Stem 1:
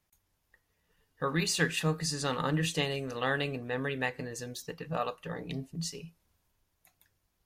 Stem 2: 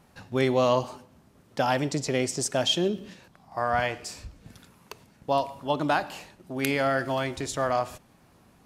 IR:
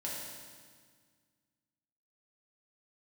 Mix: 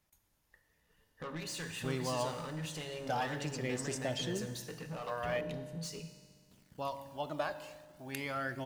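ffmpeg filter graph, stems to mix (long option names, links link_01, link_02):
-filter_complex "[0:a]acompressor=threshold=-34dB:ratio=6,asoftclip=type=tanh:threshold=-38.5dB,volume=-2.5dB,asplit=2[link_01][link_02];[link_02]volume=-5.5dB[link_03];[1:a]acrusher=bits=8:mix=0:aa=0.000001,aphaser=in_gain=1:out_gain=1:delay=2:decay=0.5:speed=0.41:type=triangular,adelay=1500,volume=-14dB,asplit=3[link_04][link_05][link_06];[link_04]atrim=end=5.41,asetpts=PTS-STARTPTS,afade=type=out:start_time=5.406:duration=0.004:curve=hsin[link_07];[link_05]atrim=start=5.41:end=6.51,asetpts=PTS-STARTPTS,volume=0[link_08];[link_06]atrim=start=6.51,asetpts=PTS-STARTPTS,afade=type=in:duration=0.004:curve=hsin[link_09];[link_07][link_08][link_09]concat=n=3:v=0:a=1,asplit=2[link_10][link_11];[link_11]volume=-13.5dB[link_12];[2:a]atrim=start_sample=2205[link_13];[link_03][link_12]amix=inputs=2:normalize=0[link_14];[link_14][link_13]afir=irnorm=-1:irlink=0[link_15];[link_01][link_10][link_15]amix=inputs=3:normalize=0"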